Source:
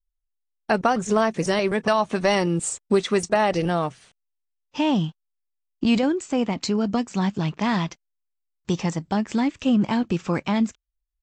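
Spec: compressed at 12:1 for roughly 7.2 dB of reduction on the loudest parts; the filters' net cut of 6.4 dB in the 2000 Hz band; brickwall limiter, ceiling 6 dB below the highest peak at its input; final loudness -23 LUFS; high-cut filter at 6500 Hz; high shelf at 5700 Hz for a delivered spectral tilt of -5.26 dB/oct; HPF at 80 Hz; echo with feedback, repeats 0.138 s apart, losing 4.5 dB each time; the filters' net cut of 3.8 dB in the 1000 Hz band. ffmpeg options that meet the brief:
-af "highpass=80,lowpass=6.5k,equalizer=f=1k:t=o:g=-3.5,equalizer=f=2k:t=o:g=-8,highshelf=f=5.7k:g=7.5,acompressor=threshold=-23dB:ratio=12,alimiter=limit=-20dB:level=0:latency=1,aecho=1:1:138|276|414|552|690|828|966|1104|1242:0.596|0.357|0.214|0.129|0.0772|0.0463|0.0278|0.0167|0.01,volume=5.5dB"

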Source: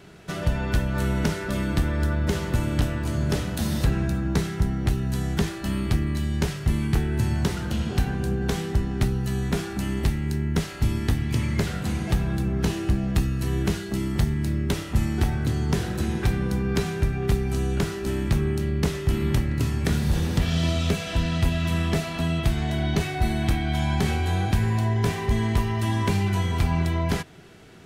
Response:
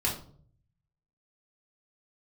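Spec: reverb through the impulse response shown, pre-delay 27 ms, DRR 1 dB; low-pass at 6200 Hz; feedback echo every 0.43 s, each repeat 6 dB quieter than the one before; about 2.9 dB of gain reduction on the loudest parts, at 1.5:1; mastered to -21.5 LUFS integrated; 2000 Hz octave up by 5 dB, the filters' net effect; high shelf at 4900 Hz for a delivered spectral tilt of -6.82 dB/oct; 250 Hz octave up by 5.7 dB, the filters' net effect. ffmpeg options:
-filter_complex "[0:a]lowpass=6.2k,equalizer=f=250:t=o:g=8,equalizer=f=2k:t=o:g=5,highshelf=f=4.9k:g=7.5,acompressor=threshold=-23dB:ratio=1.5,aecho=1:1:430|860|1290|1720|2150|2580:0.501|0.251|0.125|0.0626|0.0313|0.0157,asplit=2[a][b];[1:a]atrim=start_sample=2205,adelay=27[c];[b][c]afir=irnorm=-1:irlink=0,volume=-8.5dB[d];[a][d]amix=inputs=2:normalize=0,volume=-3.5dB"

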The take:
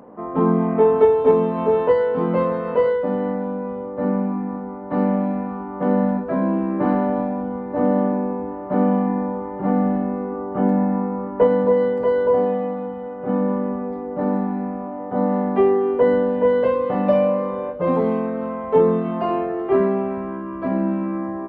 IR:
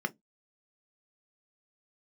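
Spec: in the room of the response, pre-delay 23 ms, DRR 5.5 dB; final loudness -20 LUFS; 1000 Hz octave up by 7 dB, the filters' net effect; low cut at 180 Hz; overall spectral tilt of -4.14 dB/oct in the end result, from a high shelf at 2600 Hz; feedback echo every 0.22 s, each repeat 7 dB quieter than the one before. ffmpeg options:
-filter_complex "[0:a]highpass=180,equalizer=f=1k:t=o:g=7.5,highshelf=f=2.6k:g=8,aecho=1:1:220|440|660|880|1100:0.447|0.201|0.0905|0.0407|0.0183,asplit=2[a][b];[1:a]atrim=start_sample=2205,adelay=23[c];[b][c]afir=irnorm=-1:irlink=0,volume=-11dB[d];[a][d]amix=inputs=2:normalize=0,volume=-2dB"

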